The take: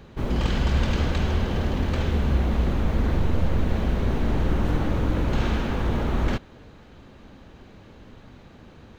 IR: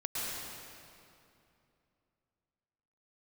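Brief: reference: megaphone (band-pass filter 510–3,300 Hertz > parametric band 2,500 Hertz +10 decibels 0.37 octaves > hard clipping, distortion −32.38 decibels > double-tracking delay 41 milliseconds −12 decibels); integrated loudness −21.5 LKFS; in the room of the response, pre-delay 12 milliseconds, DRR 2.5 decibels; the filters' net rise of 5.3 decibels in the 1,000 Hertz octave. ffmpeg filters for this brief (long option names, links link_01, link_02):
-filter_complex "[0:a]equalizer=frequency=1000:width_type=o:gain=7,asplit=2[link_01][link_02];[1:a]atrim=start_sample=2205,adelay=12[link_03];[link_02][link_03]afir=irnorm=-1:irlink=0,volume=-7.5dB[link_04];[link_01][link_04]amix=inputs=2:normalize=0,highpass=510,lowpass=3300,equalizer=frequency=2500:width_type=o:width=0.37:gain=10,asoftclip=type=hard:threshold=-18.5dB,asplit=2[link_05][link_06];[link_06]adelay=41,volume=-12dB[link_07];[link_05][link_07]amix=inputs=2:normalize=0,volume=7dB"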